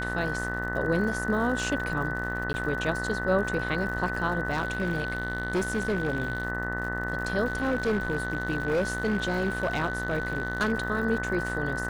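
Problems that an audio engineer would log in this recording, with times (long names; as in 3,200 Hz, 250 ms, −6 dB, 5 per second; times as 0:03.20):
mains buzz 60 Hz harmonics 33 −34 dBFS
surface crackle 96 per second −36 dBFS
whistle 1,500 Hz −32 dBFS
0:02.53–0:02.54: drop-out 10 ms
0:04.51–0:06.45: clipping −22.5 dBFS
0:07.45–0:10.73: clipping −21.5 dBFS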